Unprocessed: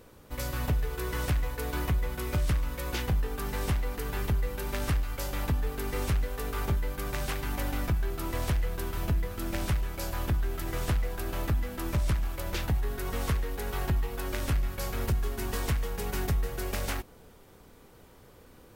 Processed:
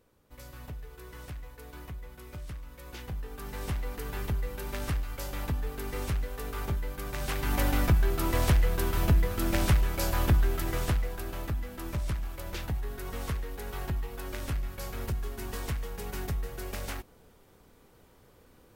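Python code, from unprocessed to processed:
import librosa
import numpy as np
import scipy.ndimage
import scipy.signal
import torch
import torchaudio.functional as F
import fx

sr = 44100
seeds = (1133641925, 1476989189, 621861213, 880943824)

y = fx.gain(x, sr, db=fx.line((2.67, -13.5), (3.87, -3.0), (7.13, -3.0), (7.57, 5.0), (10.41, 5.0), (11.41, -4.5)))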